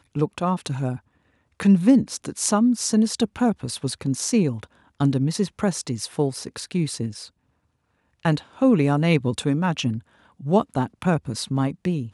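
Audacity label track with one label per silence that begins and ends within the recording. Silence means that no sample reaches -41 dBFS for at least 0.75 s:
7.280000	8.230000	silence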